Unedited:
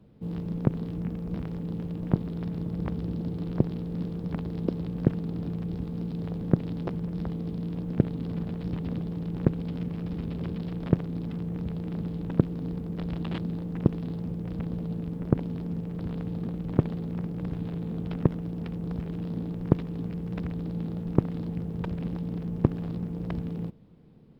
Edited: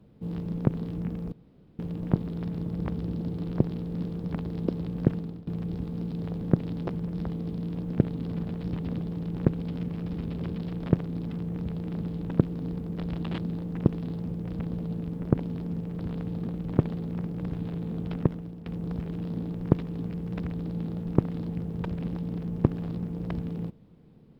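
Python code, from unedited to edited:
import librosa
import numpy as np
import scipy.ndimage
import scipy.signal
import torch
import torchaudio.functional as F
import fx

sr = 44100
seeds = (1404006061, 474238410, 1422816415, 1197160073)

y = fx.edit(x, sr, fx.room_tone_fill(start_s=1.32, length_s=0.47),
    fx.fade_out_to(start_s=5.15, length_s=0.32, floor_db=-19.5),
    fx.fade_out_to(start_s=18.16, length_s=0.5, floor_db=-11.5), tone=tone)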